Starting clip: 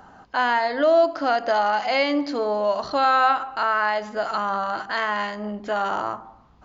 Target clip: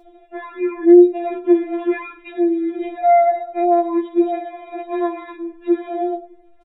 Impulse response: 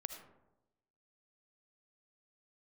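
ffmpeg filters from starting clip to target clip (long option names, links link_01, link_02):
-filter_complex "[0:a]acrossover=split=220[link_01][link_02];[link_02]acompressor=threshold=-22dB:ratio=2.5[link_03];[link_01][link_03]amix=inputs=2:normalize=0,asetrate=23361,aresample=44100,atempo=1.88775,asplit=2[link_04][link_05];[link_05]equalizer=frequency=520:width=1.9:gain=8[link_06];[1:a]atrim=start_sample=2205,atrim=end_sample=3969,adelay=14[link_07];[link_06][link_07]afir=irnorm=-1:irlink=0,volume=-5.5dB[link_08];[link_04][link_08]amix=inputs=2:normalize=0,afftfilt=real='re*4*eq(mod(b,16),0)':imag='im*4*eq(mod(b,16),0)':win_size=2048:overlap=0.75,volume=5dB"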